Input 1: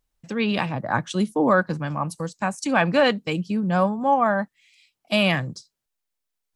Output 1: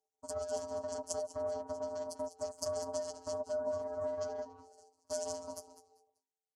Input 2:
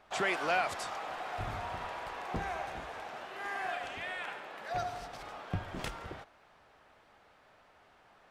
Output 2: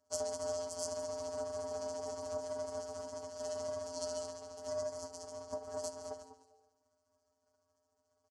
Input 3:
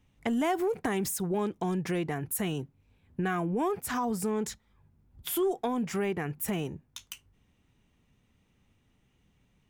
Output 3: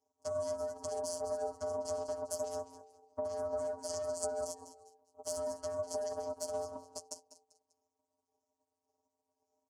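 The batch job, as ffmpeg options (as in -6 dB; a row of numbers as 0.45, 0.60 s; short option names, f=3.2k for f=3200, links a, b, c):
-filter_complex "[0:a]afftfilt=real='re*pow(10,12/40*sin(2*PI*(1.4*log(max(b,1)*sr/1024/100)/log(2)-(1.8)*(pts-256)/sr)))':imag='im*pow(10,12/40*sin(2*PI*(1.4*log(max(b,1)*sr/1024/100)/log(2)-(1.8)*(pts-256)/sr)))':win_size=1024:overlap=0.75,aeval=exprs='val(0)*sin(2*PI*210*n/s)':c=same,acompressor=threshold=-36dB:ratio=8,aeval=exprs='0.075*(cos(1*acos(clip(val(0)/0.075,-1,1)))-cos(1*PI/2))+0.0075*(cos(3*acos(clip(val(0)/0.075,-1,1)))-cos(3*PI/2))+0.00266*(cos(4*acos(clip(val(0)/0.075,-1,1)))-cos(4*PI/2))+0.00596*(cos(7*acos(clip(val(0)/0.075,-1,1)))-cos(7*PI/2))+0.0211*(cos(8*acos(clip(val(0)/0.075,-1,1)))-cos(8*PI/2))':c=same,flanger=delay=6.3:depth=7.9:regen=13:speed=0.81:shape=triangular,asuperstop=centerf=4400:order=4:qfactor=3,alimiter=level_in=5dB:limit=-24dB:level=0:latency=1:release=159,volume=-5dB,firequalizer=gain_entry='entry(140,0);entry(210,5);entry(1700,-25);entry(3100,-21);entry(4400,10);entry(6700,11);entry(10000,5);entry(14000,-22)':delay=0.05:min_phase=1,asplit=2[a][b];[b]asplit=3[c][d][e];[c]adelay=197,afreqshift=-89,volume=-12.5dB[f];[d]adelay=394,afreqshift=-178,volume=-23dB[g];[e]adelay=591,afreqshift=-267,volume=-33.4dB[h];[f][g][h]amix=inputs=3:normalize=0[i];[a][i]amix=inputs=2:normalize=0,afftfilt=real='hypot(re,im)*cos(PI*b)':imag='0':win_size=1024:overlap=0.75,acrossover=split=200|3000[j][k][l];[k]acompressor=threshold=-50dB:ratio=6[m];[j][m][l]amix=inputs=3:normalize=0,aeval=exprs='val(0)*sin(2*PI*610*n/s)':c=same,volume=7.5dB"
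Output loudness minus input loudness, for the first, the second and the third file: -16.5, -3.5, -7.5 LU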